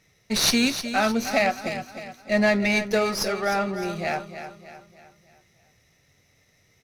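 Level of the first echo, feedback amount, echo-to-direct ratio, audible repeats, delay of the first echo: -10.5 dB, 44%, -9.5 dB, 4, 306 ms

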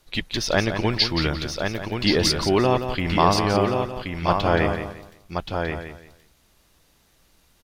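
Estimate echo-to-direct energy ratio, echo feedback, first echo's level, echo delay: -3.5 dB, no regular repeats, -9.0 dB, 174 ms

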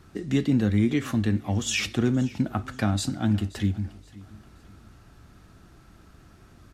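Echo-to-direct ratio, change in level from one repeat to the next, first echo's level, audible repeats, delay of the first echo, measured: -20.0 dB, -9.5 dB, -20.5 dB, 2, 526 ms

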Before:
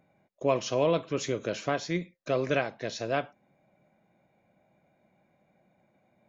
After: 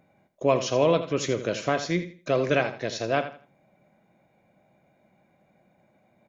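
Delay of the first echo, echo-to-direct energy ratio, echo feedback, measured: 82 ms, -11.5 dB, 26%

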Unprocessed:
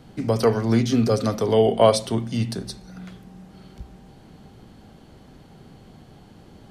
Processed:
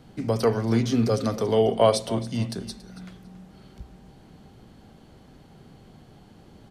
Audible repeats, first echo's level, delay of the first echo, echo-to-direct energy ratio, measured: 2, -16.5 dB, 279 ms, -16.0 dB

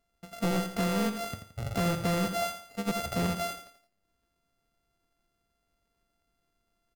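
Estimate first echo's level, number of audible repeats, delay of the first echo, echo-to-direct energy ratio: -9.5 dB, 3, 85 ms, -9.0 dB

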